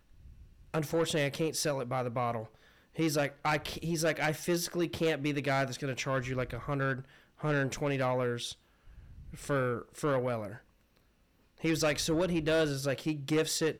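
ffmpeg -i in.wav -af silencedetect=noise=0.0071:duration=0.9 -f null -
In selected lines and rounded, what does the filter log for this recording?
silence_start: 10.57
silence_end: 11.58 | silence_duration: 1.01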